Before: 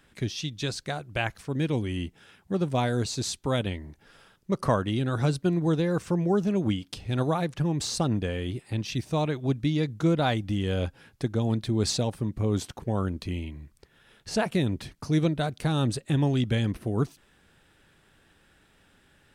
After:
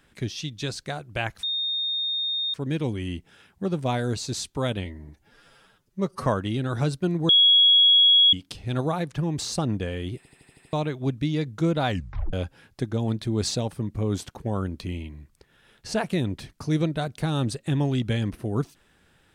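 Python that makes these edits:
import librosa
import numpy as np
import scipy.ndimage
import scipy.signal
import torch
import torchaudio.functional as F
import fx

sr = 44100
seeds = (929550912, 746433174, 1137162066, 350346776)

y = fx.edit(x, sr, fx.insert_tone(at_s=1.43, length_s=1.11, hz=3680.0, db=-24.0),
    fx.stretch_span(start_s=3.74, length_s=0.94, factor=1.5),
    fx.bleep(start_s=5.71, length_s=1.04, hz=3330.0, db=-13.0),
    fx.stutter_over(start_s=8.59, slice_s=0.08, count=7),
    fx.tape_stop(start_s=10.31, length_s=0.44), tone=tone)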